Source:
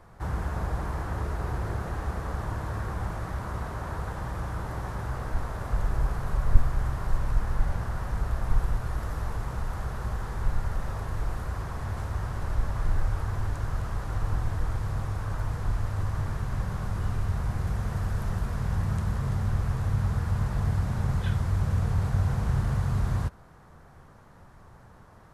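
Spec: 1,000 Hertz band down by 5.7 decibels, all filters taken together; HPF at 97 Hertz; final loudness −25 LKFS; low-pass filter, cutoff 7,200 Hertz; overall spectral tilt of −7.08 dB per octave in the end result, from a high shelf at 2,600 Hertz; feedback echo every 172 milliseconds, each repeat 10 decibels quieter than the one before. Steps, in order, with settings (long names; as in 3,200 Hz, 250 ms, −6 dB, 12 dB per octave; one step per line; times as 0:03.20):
high-pass filter 97 Hz
low-pass filter 7,200 Hz
parametric band 1,000 Hz −6 dB
high-shelf EQ 2,600 Hz −7.5 dB
repeating echo 172 ms, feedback 32%, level −10 dB
level +9.5 dB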